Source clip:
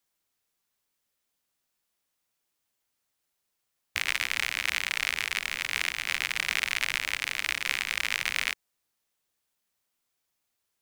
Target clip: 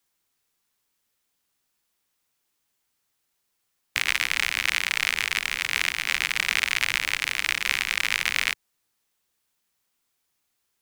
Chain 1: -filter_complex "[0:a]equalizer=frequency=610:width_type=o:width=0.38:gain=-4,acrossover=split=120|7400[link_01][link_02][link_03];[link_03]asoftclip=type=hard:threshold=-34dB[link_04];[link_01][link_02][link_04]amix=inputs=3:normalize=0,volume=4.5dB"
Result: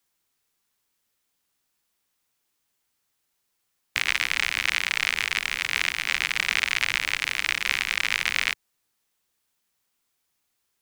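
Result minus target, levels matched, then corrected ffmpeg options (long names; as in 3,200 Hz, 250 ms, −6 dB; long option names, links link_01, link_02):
hard clipping: distortion +17 dB
-filter_complex "[0:a]equalizer=frequency=610:width_type=o:width=0.38:gain=-4,acrossover=split=120|7400[link_01][link_02][link_03];[link_03]asoftclip=type=hard:threshold=-22.5dB[link_04];[link_01][link_02][link_04]amix=inputs=3:normalize=0,volume=4.5dB"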